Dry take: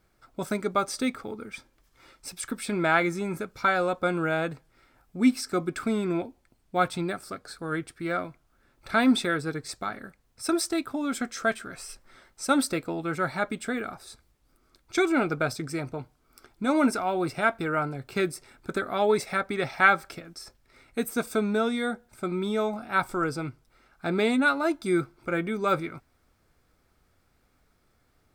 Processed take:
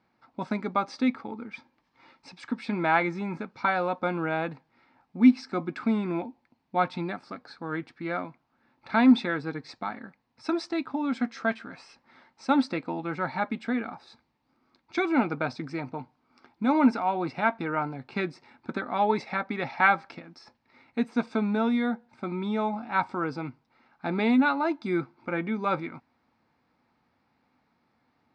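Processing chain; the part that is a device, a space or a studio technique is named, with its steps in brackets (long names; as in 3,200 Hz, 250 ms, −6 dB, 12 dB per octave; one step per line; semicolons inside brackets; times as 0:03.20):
kitchen radio (loudspeaker in its box 160–4,300 Hz, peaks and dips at 240 Hz +6 dB, 400 Hz −7 dB, 610 Hz −4 dB, 890 Hz +8 dB, 1,400 Hz −5 dB, 3,300 Hz −6 dB)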